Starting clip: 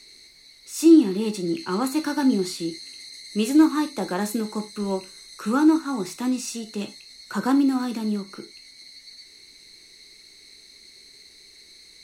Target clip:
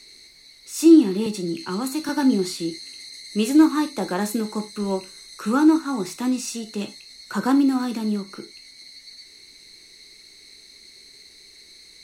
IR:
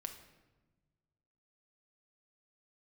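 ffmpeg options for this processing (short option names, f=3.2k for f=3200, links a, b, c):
-filter_complex "[0:a]asettb=1/sr,asplit=3[a][b][c];[a]atrim=end=1.264[d];[b]atrim=start=1.26:end=2.09,asetpts=PTS-STARTPTS,afade=t=in:d=0.004:c=qsin,afade=t=out:st=0.826:d=0.004:c=qsin,acrossover=split=240|3000[e][f][g];[f]acompressor=threshold=-30dB:ratio=6[h];[e][h][g]amix=inputs=3:normalize=0[i];[c]atrim=start=2.086[j];[d][i]acrossfade=d=0.004:c1=hsin:c2=qsin[k];[k][j]acrossfade=d=0.004:c1=qsin:c2=hsin,volume=1.5dB"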